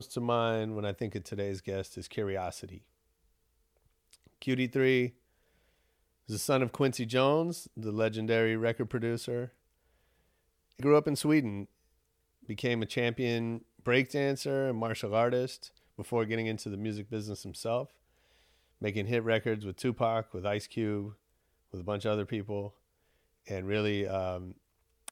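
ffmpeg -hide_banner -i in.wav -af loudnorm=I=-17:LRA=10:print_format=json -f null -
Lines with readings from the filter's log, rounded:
"input_i" : "-32.2",
"input_tp" : "-12.0",
"input_lra" : "5.1",
"input_thresh" : "-43.0",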